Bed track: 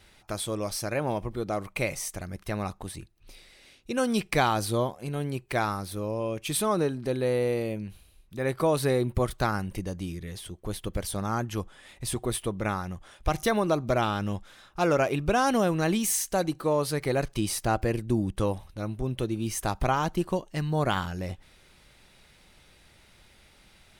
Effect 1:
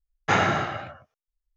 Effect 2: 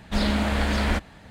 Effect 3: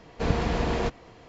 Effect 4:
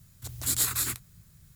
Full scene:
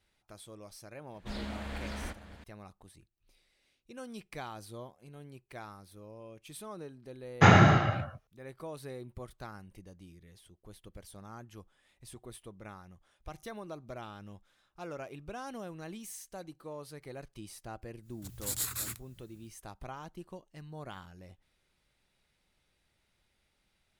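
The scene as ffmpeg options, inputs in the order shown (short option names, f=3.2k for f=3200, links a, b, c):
-filter_complex "[0:a]volume=-18.5dB[a];[2:a]aecho=1:1:567:0.211[b];[1:a]equalizer=f=120:t=o:w=2.1:g=11[c];[b]atrim=end=1.3,asetpts=PTS-STARTPTS,volume=-16dB,afade=t=in:d=0.004:c=hsin,afade=t=out:st=1.296:d=0.004:c=hsin,adelay=1140[d];[c]atrim=end=1.56,asetpts=PTS-STARTPTS,volume=-0.5dB,afade=t=in:d=0.004:c=hsin,afade=t=out:st=1.556:d=0.004:c=hsin,adelay=7130[e];[4:a]atrim=end=1.55,asetpts=PTS-STARTPTS,volume=-8dB,afade=t=in:d=0.1,afade=t=out:st=1.45:d=0.1,adelay=18000[f];[a][d][e][f]amix=inputs=4:normalize=0"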